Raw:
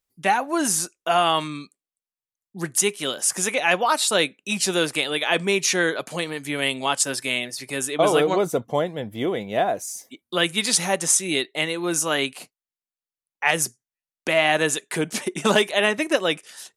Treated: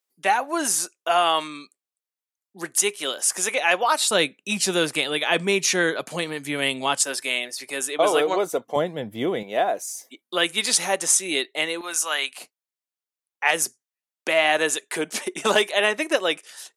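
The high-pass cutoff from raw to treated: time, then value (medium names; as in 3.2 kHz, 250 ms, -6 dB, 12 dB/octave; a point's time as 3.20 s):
360 Hz
from 4.11 s 110 Hz
from 7.01 s 370 Hz
from 8.76 s 120 Hz
from 9.43 s 320 Hz
from 11.81 s 870 Hz
from 12.38 s 330 Hz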